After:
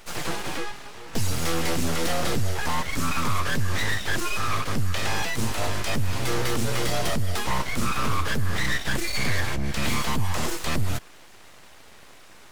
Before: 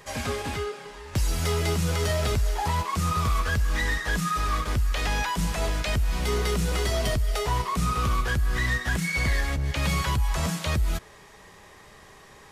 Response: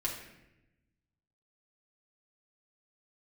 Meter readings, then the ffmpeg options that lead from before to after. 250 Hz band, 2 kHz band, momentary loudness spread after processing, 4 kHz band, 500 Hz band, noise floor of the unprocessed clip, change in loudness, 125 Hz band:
+2.0 dB, +1.0 dB, 4 LU, +2.5 dB, -0.5 dB, -50 dBFS, -0.5 dB, -2.0 dB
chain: -af "aeval=exprs='abs(val(0))':c=same,volume=1.41"

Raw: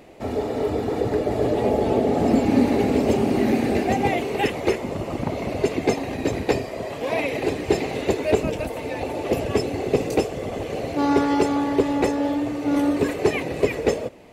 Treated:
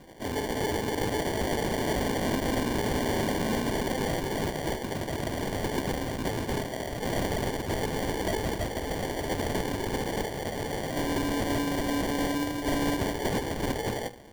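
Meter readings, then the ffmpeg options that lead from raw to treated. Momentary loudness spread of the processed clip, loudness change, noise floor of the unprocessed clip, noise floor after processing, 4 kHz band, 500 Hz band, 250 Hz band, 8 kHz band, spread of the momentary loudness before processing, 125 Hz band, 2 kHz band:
4 LU, -7.0 dB, -32 dBFS, -36 dBFS, 0.0 dB, -9.0 dB, -8.0 dB, +1.5 dB, 8 LU, -3.5 dB, -3.0 dB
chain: -af "highshelf=f=2000:t=q:w=1.5:g=11,bandreject=f=60:t=h:w=6,bandreject=f=120:t=h:w=6,bandreject=f=180:t=h:w=6,bandreject=f=240:t=h:w=6,bandreject=f=300:t=h:w=6,bandreject=f=360:t=h:w=6,bandreject=f=420:t=h:w=6,bandreject=f=480:t=h:w=6,alimiter=limit=0.2:level=0:latency=1:release=73,acrusher=samples=34:mix=1:aa=0.000001,aeval=exprs='(mod(6.68*val(0)+1,2)-1)/6.68':c=same,volume=0.596"

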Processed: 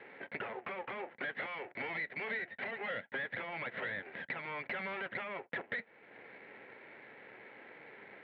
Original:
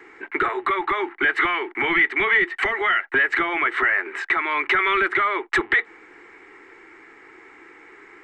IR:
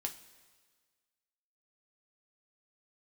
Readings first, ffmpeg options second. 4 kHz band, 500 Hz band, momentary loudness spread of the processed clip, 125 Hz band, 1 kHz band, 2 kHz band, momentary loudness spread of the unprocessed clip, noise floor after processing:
-19.0 dB, -15.5 dB, 15 LU, no reading, -21.0 dB, -19.5 dB, 6 LU, -62 dBFS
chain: -af "aeval=exprs='max(val(0),0)':c=same,acompressor=threshold=0.00794:ratio=2,highpass=f=130:w=0.5412,highpass=f=130:w=1.3066,equalizer=f=150:t=q:w=4:g=-3,equalizer=f=220:t=q:w=4:g=4,equalizer=f=340:t=q:w=4:g=-10,equalizer=f=540:t=q:w=4:g=9,equalizer=f=1200:t=q:w=4:g=-10,lowpass=f=2500:w=0.5412,lowpass=f=2500:w=1.3066"

